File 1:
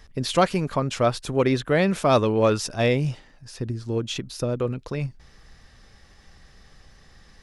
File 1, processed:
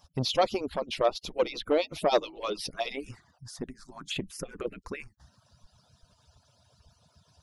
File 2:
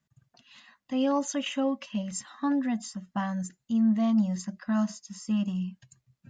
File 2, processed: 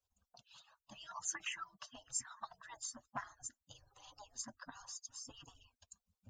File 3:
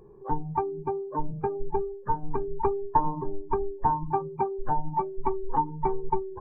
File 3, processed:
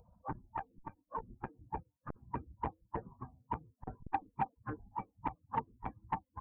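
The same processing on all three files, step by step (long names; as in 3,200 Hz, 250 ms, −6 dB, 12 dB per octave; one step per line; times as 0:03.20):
harmonic-percussive split with one part muted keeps percussive
phaser swept by the level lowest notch 320 Hz, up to 1,700 Hz, full sweep at −25 dBFS
saturating transformer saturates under 690 Hz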